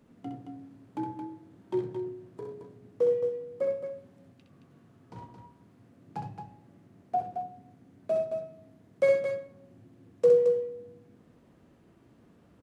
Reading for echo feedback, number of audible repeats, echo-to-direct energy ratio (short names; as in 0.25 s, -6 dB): no steady repeat, 2, -2.5 dB